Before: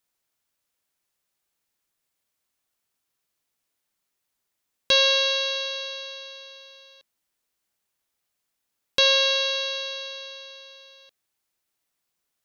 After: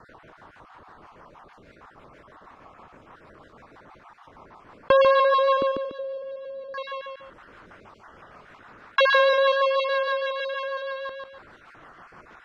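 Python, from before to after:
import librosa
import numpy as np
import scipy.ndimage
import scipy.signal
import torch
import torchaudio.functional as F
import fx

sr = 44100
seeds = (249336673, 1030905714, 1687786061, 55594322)

y = fx.spec_dropout(x, sr, seeds[0], share_pct=38)
y = fx.lowpass_res(y, sr, hz=fx.steps((0.0, 1100.0), (5.62, 280.0), (6.74, 1300.0)), q=2.3)
y = fx.rotary(y, sr, hz=6.3)
y = fx.echo_feedback(y, sr, ms=145, feedback_pct=15, wet_db=-8)
y = fx.env_flatten(y, sr, amount_pct=50)
y = F.gain(torch.from_numpy(y), 8.0).numpy()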